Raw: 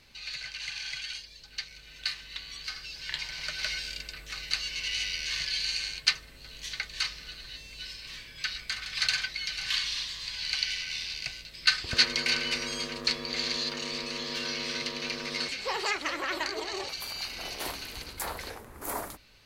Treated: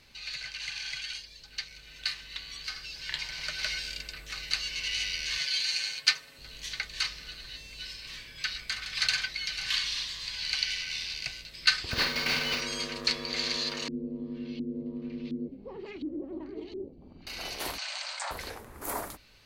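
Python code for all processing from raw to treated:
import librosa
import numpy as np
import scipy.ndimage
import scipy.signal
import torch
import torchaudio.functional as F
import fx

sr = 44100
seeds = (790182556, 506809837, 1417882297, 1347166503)

y = fx.chain(x, sr, fx.highpass(hz=420.0, slope=6),
    fx.comb(ms=7.3, depth=0.61), at=(5.38, 6.38))
y = fx.chain(y, sr, fx.cvsd(bps=32000),
    fx.quant_float(bits=2),
    fx.doubler(ms=47.0, db=-6), at=(11.91, 12.61))
y = fx.chain(y, sr, fx.curve_eq(hz=(130.0, 190.0, 270.0, 670.0, 1500.0, 3200.0), db=(0, 6, 8, -17, -29, -15)),
    fx.filter_lfo_lowpass(shape='saw_up', hz=1.4, low_hz=290.0, high_hz=3500.0, q=1.7), at=(13.88, 17.27))
y = fx.chain(y, sr, fx.brickwall_bandpass(low_hz=540.0, high_hz=8900.0),
    fx.env_flatten(amount_pct=70), at=(17.78, 18.31))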